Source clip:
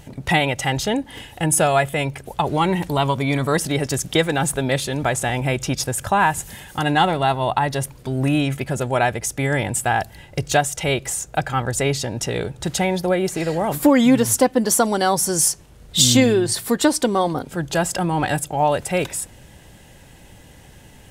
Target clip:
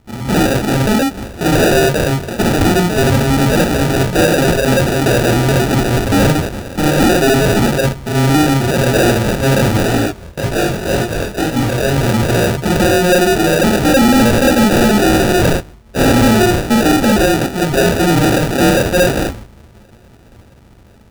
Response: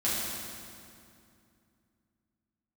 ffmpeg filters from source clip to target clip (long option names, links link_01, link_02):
-filter_complex "[0:a]agate=range=-12dB:threshold=-41dB:ratio=16:detection=peak,dynaudnorm=framelen=340:gausssize=5:maxgain=4dB[link_01];[1:a]atrim=start_sample=2205,atrim=end_sample=3969[link_02];[link_01][link_02]afir=irnorm=-1:irlink=0,acrusher=samples=41:mix=1:aa=0.000001,asoftclip=type=tanh:threshold=-11dB,asplit=3[link_03][link_04][link_05];[link_03]afade=type=out:start_time=9.86:duration=0.02[link_06];[link_04]flanger=delay=17:depth=7.2:speed=1.9,afade=type=in:start_time=9.86:duration=0.02,afade=type=out:start_time=11.95:duration=0.02[link_07];[link_05]afade=type=in:start_time=11.95:duration=0.02[link_08];[link_06][link_07][link_08]amix=inputs=3:normalize=0,volume=3.5dB"